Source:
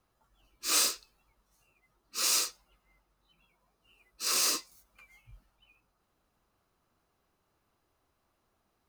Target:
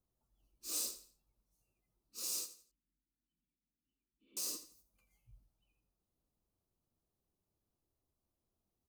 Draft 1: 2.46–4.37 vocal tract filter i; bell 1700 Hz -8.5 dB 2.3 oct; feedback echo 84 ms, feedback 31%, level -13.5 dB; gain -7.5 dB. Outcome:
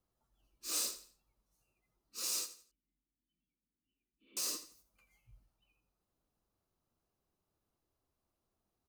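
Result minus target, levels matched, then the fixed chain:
2000 Hz band +5.5 dB
2.46–4.37 vocal tract filter i; bell 1700 Hz -19 dB 2.3 oct; feedback echo 84 ms, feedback 31%, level -13.5 dB; gain -7.5 dB

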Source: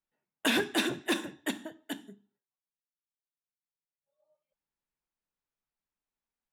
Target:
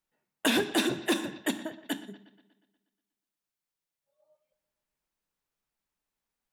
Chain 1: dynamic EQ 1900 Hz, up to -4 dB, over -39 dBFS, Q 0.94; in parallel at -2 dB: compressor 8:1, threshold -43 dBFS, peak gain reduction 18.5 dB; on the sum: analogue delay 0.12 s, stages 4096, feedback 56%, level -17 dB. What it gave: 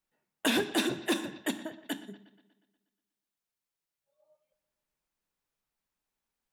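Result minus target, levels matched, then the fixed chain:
compressor: peak gain reduction +10.5 dB
dynamic EQ 1900 Hz, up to -4 dB, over -39 dBFS, Q 0.94; in parallel at -2 dB: compressor 8:1, threshold -31 dBFS, peak gain reduction 8 dB; on the sum: analogue delay 0.12 s, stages 4096, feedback 56%, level -17 dB

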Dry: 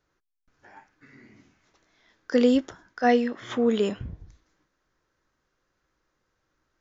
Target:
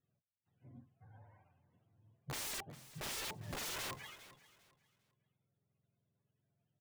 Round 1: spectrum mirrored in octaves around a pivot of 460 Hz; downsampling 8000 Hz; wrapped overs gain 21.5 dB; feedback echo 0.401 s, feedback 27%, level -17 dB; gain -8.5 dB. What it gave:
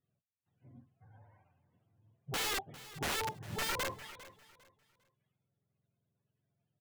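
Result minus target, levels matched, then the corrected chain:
wrapped overs: distortion -7 dB
spectrum mirrored in octaves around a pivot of 460 Hz; downsampling 8000 Hz; wrapped overs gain 29 dB; feedback echo 0.401 s, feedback 27%, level -17 dB; gain -8.5 dB

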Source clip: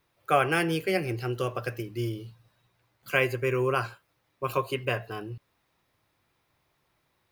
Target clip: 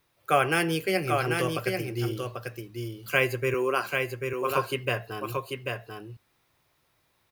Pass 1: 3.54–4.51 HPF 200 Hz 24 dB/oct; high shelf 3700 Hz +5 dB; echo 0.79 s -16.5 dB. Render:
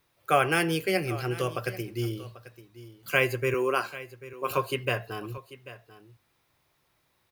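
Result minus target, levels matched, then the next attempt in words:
echo-to-direct -12 dB
3.54–4.51 HPF 200 Hz 24 dB/oct; high shelf 3700 Hz +5 dB; echo 0.79 s -4.5 dB

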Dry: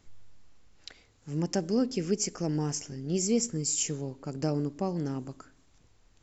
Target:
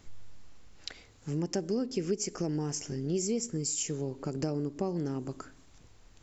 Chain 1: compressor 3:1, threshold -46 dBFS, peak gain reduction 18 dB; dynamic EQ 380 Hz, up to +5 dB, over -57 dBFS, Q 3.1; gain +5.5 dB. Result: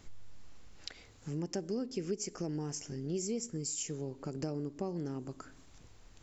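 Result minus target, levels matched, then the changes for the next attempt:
compressor: peak gain reduction +5 dB
change: compressor 3:1, threshold -38.5 dBFS, peak gain reduction 13 dB

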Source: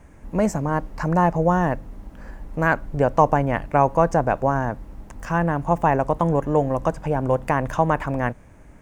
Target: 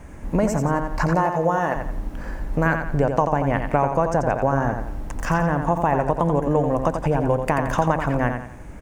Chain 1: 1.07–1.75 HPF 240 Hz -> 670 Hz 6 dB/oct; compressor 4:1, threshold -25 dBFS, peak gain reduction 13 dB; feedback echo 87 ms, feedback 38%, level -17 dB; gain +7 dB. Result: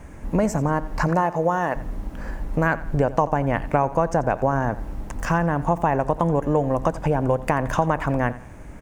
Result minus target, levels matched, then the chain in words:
echo-to-direct -10.5 dB
1.07–1.75 HPF 240 Hz -> 670 Hz 6 dB/oct; compressor 4:1, threshold -25 dBFS, peak gain reduction 13 dB; feedback echo 87 ms, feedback 38%, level -6.5 dB; gain +7 dB

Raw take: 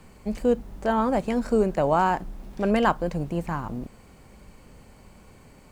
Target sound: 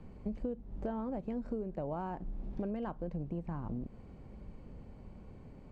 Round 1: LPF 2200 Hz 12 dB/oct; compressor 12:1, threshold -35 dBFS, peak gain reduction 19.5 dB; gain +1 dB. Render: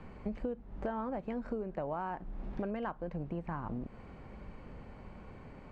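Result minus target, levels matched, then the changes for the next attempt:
2000 Hz band +8.0 dB
add after LPF: bell 1600 Hz -12 dB 2.6 oct

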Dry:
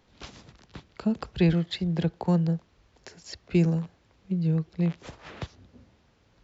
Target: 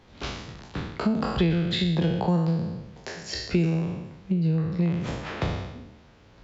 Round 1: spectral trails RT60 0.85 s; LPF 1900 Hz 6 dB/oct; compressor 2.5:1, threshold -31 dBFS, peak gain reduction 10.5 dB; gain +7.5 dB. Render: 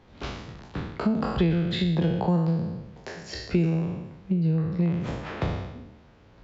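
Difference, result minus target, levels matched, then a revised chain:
4000 Hz band -4.0 dB
spectral trails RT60 0.85 s; LPF 4500 Hz 6 dB/oct; compressor 2.5:1, threshold -31 dBFS, peak gain reduction 10.5 dB; gain +7.5 dB

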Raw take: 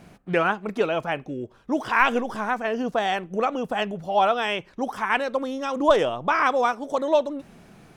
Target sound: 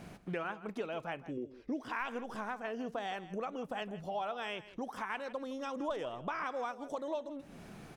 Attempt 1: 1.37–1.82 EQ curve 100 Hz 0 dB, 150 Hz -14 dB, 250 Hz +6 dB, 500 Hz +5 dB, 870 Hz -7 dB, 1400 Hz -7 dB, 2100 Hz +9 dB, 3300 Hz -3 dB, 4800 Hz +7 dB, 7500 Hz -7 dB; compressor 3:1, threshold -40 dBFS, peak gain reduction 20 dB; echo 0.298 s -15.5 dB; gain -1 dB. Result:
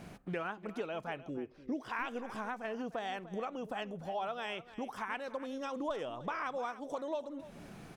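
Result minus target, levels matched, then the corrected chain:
echo 0.137 s late
1.37–1.82 EQ curve 100 Hz 0 dB, 150 Hz -14 dB, 250 Hz +6 dB, 500 Hz +5 dB, 870 Hz -7 dB, 1400 Hz -7 dB, 2100 Hz +9 dB, 3300 Hz -3 dB, 4800 Hz +7 dB, 7500 Hz -7 dB; compressor 3:1, threshold -40 dBFS, peak gain reduction 20 dB; echo 0.161 s -15.5 dB; gain -1 dB

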